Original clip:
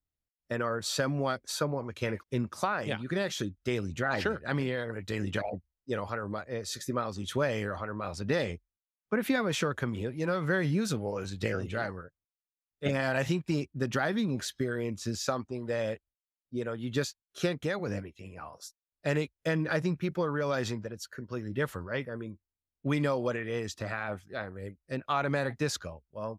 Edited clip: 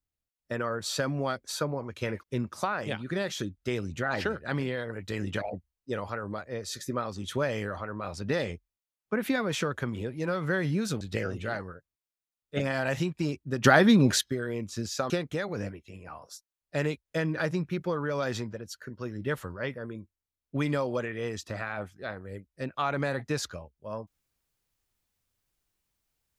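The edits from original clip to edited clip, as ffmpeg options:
-filter_complex "[0:a]asplit=5[a][b][c][d][e];[a]atrim=end=11.012[f];[b]atrim=start=11.298:end=13.932[g];[c]atrim=start=13.928:end=14.502,asetpts=PTS-STARTPTS,volume=10.5dB[h];[d]atrim=start=14.498:end=15.392[i];[e]atrim=start=17.408[j];[f][g]acrossfade=d=0.004:c1=hsin:c2=hsin[k];[k][h]acrossfade=d=0.004:c1=hsin:c2=hsin[l];[l][i]acrossfade=d=0.004:c1=hsin:c2=hsin[m];[m][j]acrossfade=d=0.004:c1=hsin:c2=hsin"

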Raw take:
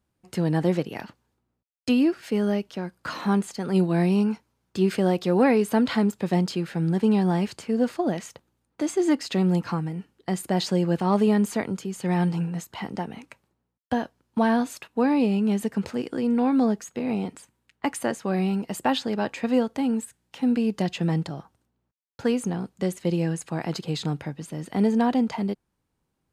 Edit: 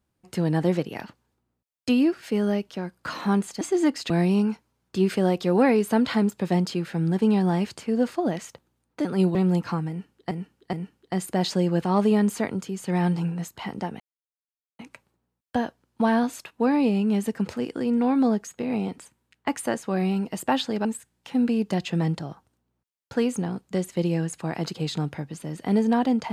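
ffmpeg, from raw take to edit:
-filter_complex "[0:a]asplit=9[a][b][c][d][e][f][g][h][i];[a]atrim=end=3.612[j];[b]atrim=start=8.858:end=9.352[k];[c]atrim=start=3.908:end=8.862[l];[d]atrim=start=3.608:end=3.912[m];[e]atrim=start=9.348:end=10.312[n];[f]atrim=start=9.888:end=10.312[o];[g]atrim=start=9.888:end=13.16,asetpts=PTS-STARTPTS,afade=t=out:st=3.268:d=0.004:c=hsin,apad=pad_dur=0.79[p];[h]atrim=start=13.16:end=19.222,asetpts=PTS-STARTPTS,afade=t=in:d=0.004:c=hsin[q];[i]atrim=start=19.928[r];[j][k]acrossfade=d=0.004:c1=hsin:c2=hsin[s];[s][l]acrossfade=d=0.004:c1=hsin:c2=hsin[t];[t][m]acrossfade=d=0.004:c1=hsin:c2=hsin[u];[u][n]acrossfade=d=0.004:c1=hsin:c2=hsin[v];[v][o]acrossfade=d=0.004:c1=hsin:c2=hsin[w];[p][q]concat=n=2:v=0:a=1[x];[w][x]acrossfade=d=0.004:c1=hsin:c2=hsin[y];[y][r]acrossfade=d=0.004:c1=hsin:c2=hsin"

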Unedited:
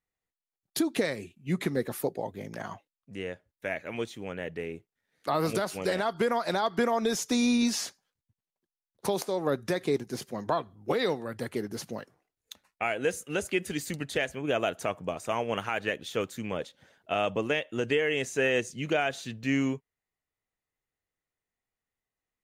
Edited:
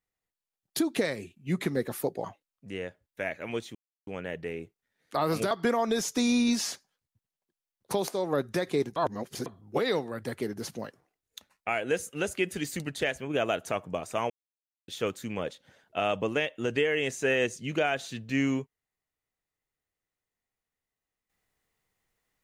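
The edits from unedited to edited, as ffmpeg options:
-filter_complex "[0:a]asplit=8[a][b][c][d][e][f][g][h];[a]atrim=end=2.242[i];[b]atrim=start=2.688:end=4.2,asetpts=PTS-STARTPTS,afade=t=out:st=1.508:d=0.004:c=hsin,apad=pad_dur=0.32[j];[c]atrim=start=4.2:end=5.642,asetpts=PTS-STARTPTS,afade=t=in:d=0.004:c=hsin[k];[d]atrim=start=6.648:end=10.102[l];[e]atrim=start=10.098:end=10.602,asetpts=PTS-STARTPTS,areverse[m];[f]atrim=start=10.598:end=15.44,asetpts=PTS-STARTPTS,afade=t=out:st=4.838:d=0.004:c=hsin[n];[g]atrim=start=15.44:end=16.02,asetpts=PTS-STARTPTS,volume=0[o];[h]atrim=start=16.02,asetpts=PTS-STARTPTS,afade=t=in:d=0.004:c=hsin[p];[j][k]concat=n=2:v=0:a=1[q];[i][q]acrossfade=d=0.004:c1=hsin:c2=hsin[r];[r][l]acrossfade=d=0.004:c1=hsin:c2=hsin[s];[s][m]acrossfade=d=0.004:c1=hsin:c2=hsin[t];[n][o][p]concat=n=3:v=0:a=1[u];[t][u]acrossfade=d=0.004:c1=hsin:c2=hsin"

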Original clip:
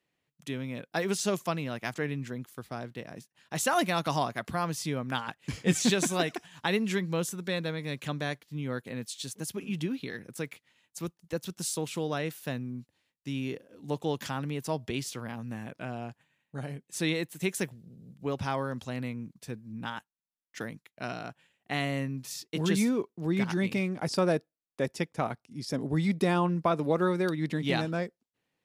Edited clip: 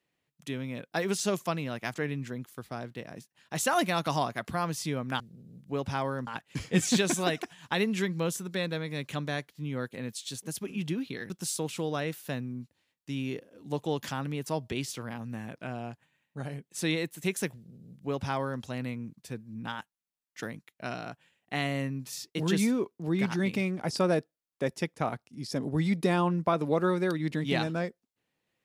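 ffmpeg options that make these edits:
-filter_complex "[0:a]asplit=4[a][b][c][d];[a]atrim=end=5.202[e];[b]atrim=start=17.728:end=18.802[f];[c]atrim=start=5.198:end=10.232[g];[d]atrim=start=11.478[h];[e][f]acrossfade=d=0.004:c1=hsin:c2=hsin[i];[i][g]acrossfade=d=0.004:c1=hsin:c2=hsin[j];[j][h]acrossfade=d=0.004:c1=hsin:c2=hsin"

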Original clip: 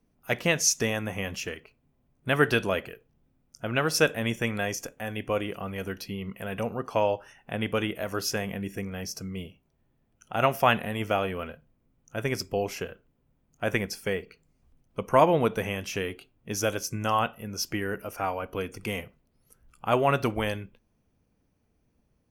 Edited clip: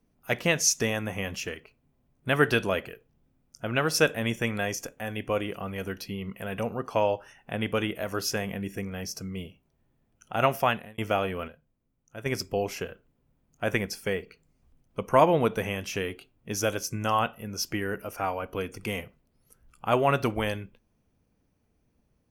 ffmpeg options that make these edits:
-filter_complex "[0:a]asplit=4[a][b][c][d];[a]atrim=end=10.98,asetpts=PTS-STARTPTS,afade=t=out:st=10.54:d=0.44[e];[b]atrim=start=10.98:end=11.482,asetpts=PTS-STARTPTS,afade=t=in:d=0.004:c=hsin[f];[c]atrim=start=11.478:end=12.262,asetpts=PTS-STARTPTS,volume=-8dB[g];[d]atrim=start=12.258[h];[e][f]concat=n=2:v=0:a=1[i];[i][g]acrossfade=d=0.004:c1=hsin:c2=hsin[j];[j][h]acrossfade=d=0.004:c1=hsin:c2=hsin"

